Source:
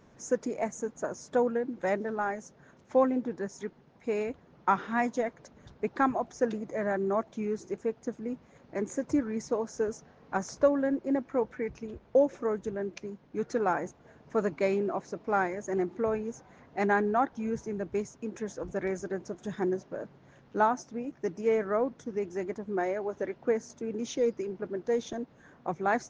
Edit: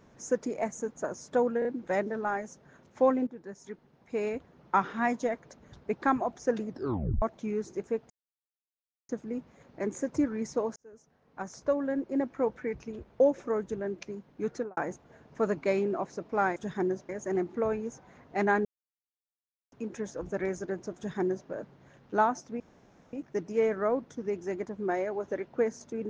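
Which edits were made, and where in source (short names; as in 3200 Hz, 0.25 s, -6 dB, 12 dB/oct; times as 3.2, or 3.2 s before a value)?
1.59 stutter 0.03 s, 3 plays
3.21–4.26 fade in, from -12.5 dB
6.61 tape stop 0.55 s
8.04 insert silence 0.99 s
9.71–11.25 fade in
13.46–13.72 studio fade out
17.07–18.14 mute
19.38–19.91 copy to 15.51
21.02 insert room tone 0.53 s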